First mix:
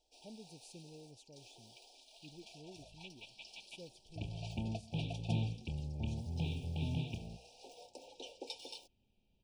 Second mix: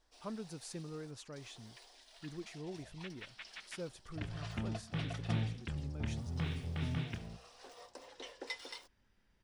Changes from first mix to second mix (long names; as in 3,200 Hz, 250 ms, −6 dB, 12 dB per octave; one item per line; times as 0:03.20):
speech +9.0 dB
master: remove linear-phase brick-wall band-stop 940–2,300 Hz